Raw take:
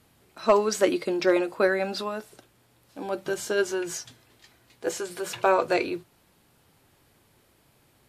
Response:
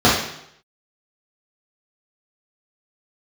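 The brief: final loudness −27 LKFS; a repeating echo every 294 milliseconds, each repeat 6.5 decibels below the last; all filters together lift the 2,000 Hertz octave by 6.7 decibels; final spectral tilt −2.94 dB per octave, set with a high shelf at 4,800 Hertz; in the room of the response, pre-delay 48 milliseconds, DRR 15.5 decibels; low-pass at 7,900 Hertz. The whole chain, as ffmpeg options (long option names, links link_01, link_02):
-filter_complex "[0:a]lowpass=7900,equalizer=frequency=2000:width_type=o:gain=8.5,highshelf=frequency=4800:gain=3.5,aecho=1:1:294|588|882|1176|1470|1764:0.473|0.222|0.105|0.0491|0.0231|0.0109,asplit=2[link_01][link_02];[1:a]atrim=start_sample=2205,adelay=48[link_03];[link_02][link_03]afir=irnorm=-1:irlink=0,volume=-41dB[link_04];[link_01][link_04]amix=inputs=2:normalize=0,volume=-3dB"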